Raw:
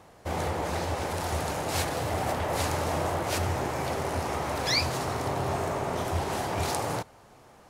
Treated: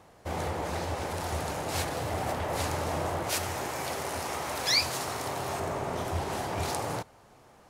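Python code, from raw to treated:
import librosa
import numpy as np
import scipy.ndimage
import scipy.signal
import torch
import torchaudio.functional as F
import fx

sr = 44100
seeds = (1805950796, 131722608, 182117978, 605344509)

y = fx.tilt_eq(x, sr, slope=2.0, at=(3.29, 5.6))
y = F.gain(torch.from_numpy(y), -2.5).numpy()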